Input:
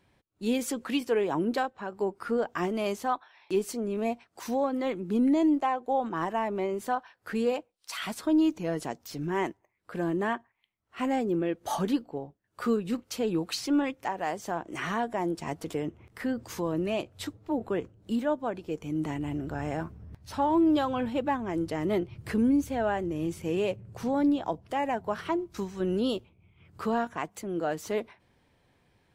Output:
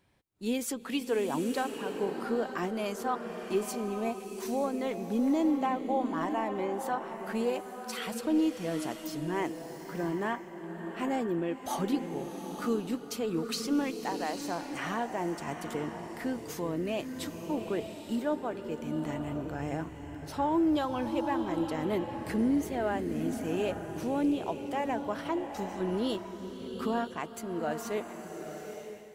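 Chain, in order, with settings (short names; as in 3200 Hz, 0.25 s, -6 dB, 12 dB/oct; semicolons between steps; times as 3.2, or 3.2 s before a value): high shelf 7400 Hz +5.5 dB; bloom reverb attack 0.89 s, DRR 6 dB; gain -3.5 dB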